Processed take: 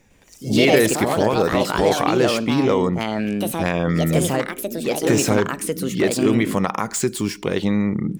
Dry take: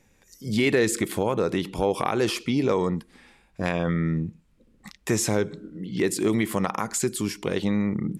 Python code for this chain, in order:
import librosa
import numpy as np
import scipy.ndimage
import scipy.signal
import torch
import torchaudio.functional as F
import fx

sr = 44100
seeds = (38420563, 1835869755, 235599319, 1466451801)

y = scipy.signal.medfilt(x, 3)
y = fx.echo_pitch(y, sr, ms=106, semitones=4, count=2, db_per_echo=-3.0)
y = y * 10.0 ** (4.5 / 20.0)